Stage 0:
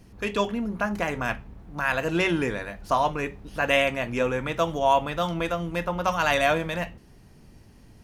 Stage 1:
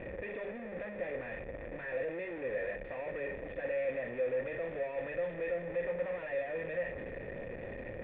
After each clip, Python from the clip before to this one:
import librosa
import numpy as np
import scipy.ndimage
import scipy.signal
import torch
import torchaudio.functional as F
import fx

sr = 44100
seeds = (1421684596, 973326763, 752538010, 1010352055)

y = np.sign(x) * np.sqrt(np.mean(np.square(x)))
y = fx.formant_cascade(y, sr, vowel='e')
y = fx.hum_notches(y, sr, base_hz=50, count=4)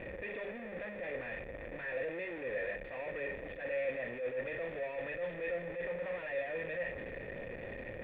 y = fx.high_shelf(x, sr, hz=2300.0, db=9.5)
y = fx.attack_slew(y, sr, db_per_s=110.0)
y = y * 10.0 ** (-2.0 / 20.0)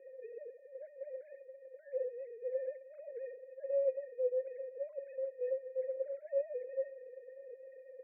y = fx.sine_speech(x, sr)
y = fx.ladder_bandpass(y, sr, hz=430.0, resonance_pct=65)
y = y * 10.0 ** (8.5 / 20.0)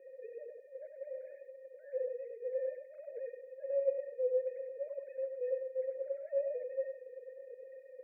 y = x + 10.0 ** (-5.5 / 20.0) * np.pad(x, (int(98 * sr / 1000.0), 0))[:len(x)]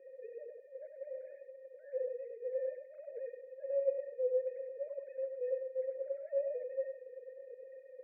y = fx.air_absorb(x, sr, metres=190.0)